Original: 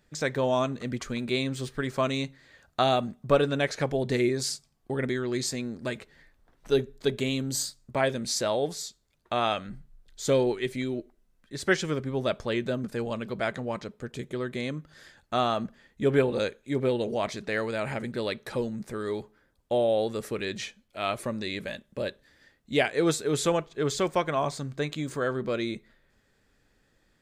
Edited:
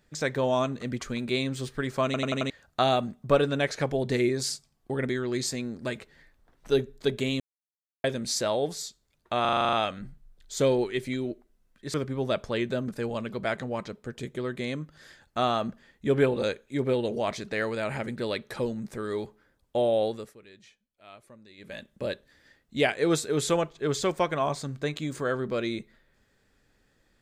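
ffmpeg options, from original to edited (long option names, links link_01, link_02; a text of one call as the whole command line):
ffmpeg -i in.wav -filter_complex "[0:a]asplit=19[link_01][link_02][link_03][link_04][link_05][link_06][link_07][link_08][link_09][link_10][link_11][link_12][link_13][link_14][link_15][link_16][link_17][link_18][link_19];[link_01]atrim=end=2.142[link_20];[link_02]atrim=start=2.048:end=2.142[link_21];[link_03]atrim=start=2.048:end=2.142[link_22];[link_04]atrim=start=2.048:end=2.142[link_23];[link_05]atrim=start=2.048:end=2.142[link_24];[link_06]atrim=start=2.498:end=7.4,asetpts=PTS-STARTPTS,afade=type=out:start_time=4.898:duration=0.004:curve=hsin[link_25];[link_07]atrim=start=7.4:end=8.04,asetpts=PTS-STARTPTS,volume=0[link_26];[link_08]atrim=start=8.04:end=9.452,asetpts=PTS-STARTPTS,afade=type=in:duration=0.004:curve=hsin[link_27];[link_09]atrim=start=9.408:end=9.452[link_28];[link_10]atrim=start=9.408:end=9.452[link_29];[link_11]atrim=start=9.408:end=9.452[link_30];[link_12]atrim=start=9.408:end=9.452[link_31];[link_13]atrim=start=9.408:end=9.452[link_32];[link_14]atrim=start=9.408:end=9.452[link_33];[link_15]atrim=start=9.408:end=9.452[link_34];[link_16]atrim=start=9.408:end=11.622[link_35];[link_17]atrim=start=11.898:end=20.3,asetpts=PTS-STARTPTS,afade=type=out:start_time=8.092:duration=0.31:silence=0.1[link_36];[link_18]atrim=start=20.3:end=21.53,asetpts=PTS-STARTPTS,volume=-20dB[link_37];[link_19]atrim=start=21.53,asetpts=PTS-STARTPTS,afade=type=in:duration=0.31:silence=0.1[link_38];[link_20][link_21]acrossfade=duration=0.004:curve1=hsin:curve2=hsin[link_39];[link_39][link_22]acrossfade=duration=0.004:curve1=hsin:curve2=hsin[link_40];[link_40][link_23]acrossfade=duration=0.004:curve1=hsin:curve2=hsin[link_41];[link_41][link_24]acrossfade=duration=0.004:curve1=hsin:curve2=hsin[link_42];[link_25][link_26][link_27]concat=n=3:v=0:a=1[link_43];[link_42][link_43]acrossfade=duration=0.004:curve1=hsin:curve2=hsin[link_44];[link_44][link_28]acrossfade=duration=0.004:curve1=hsin:curve2=hsin[link_45];[link_45][link_29]acrossfade=duration=0.004:curve1=hsin:curve2=hsin[link_46];[link_46][link_30]acrossfade=duration=0.004:curve1=hsin:curve2=hsin[link_47];[link_47][link_31]acrossfade=duration=0.004:curve1=hsin:curve2=hsin[link_48];[link_48][link_32]acrossfade=duration=0.004:curve1=hsin:curve2=hsin[link_49];[link_49][link_33]acrossfade=duration=0.004:curve1=hsin:curve2=hsin[link_50];[link_50][link_34]acrossfade=duration=0.004:curve1=hsin:curve2=hsin[link_51];[link_51][link_35]acrossfade=duration=0.004:curve1=hsin:curve2=hsin[link_52];[link_36][link_37][link_38]concat=n=3:v=0:a=1[link_53];[link_52][link_53]acrossfade=duration=0.004:curve1=hsin:curve2=hsin" out.wav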